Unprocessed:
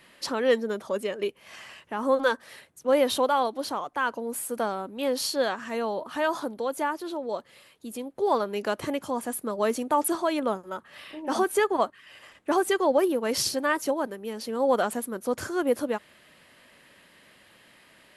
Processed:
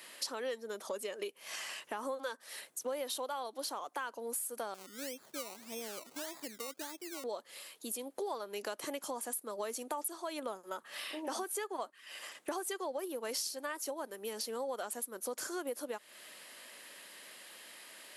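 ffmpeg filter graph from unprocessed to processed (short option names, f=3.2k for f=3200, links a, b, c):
-filter_complex "[0:a]asettb=1/sr,asplit=3[a][b][c];[a]atrim=end=4.744[d];[b]atrim=start=4.74:end=7.24,asetpts=PTS-STARTPTS,afade=t=in:d=0.004:c=qsin,afade=t=out:st=2.496:d=0.004:c=qsin,bandpass=f=100:t=q:w=0.78,acrusher=samples=21:mix=1:aa=0.000001:lfo=1:lforange=12.6:lforate=1.7[e];[c]atrim=start=7.236[f];[d][e]acrossfade=d=0.004:c1=hsin:c2=qsin[g];[g][f]acrossfade=d=0.004:c1=qsin:c2=hsin,highpass=170,bass=f=250:g=-12,treble=f=4k:g=10,acompressor=threshold=-38dB:ratio=6,volume=1dB"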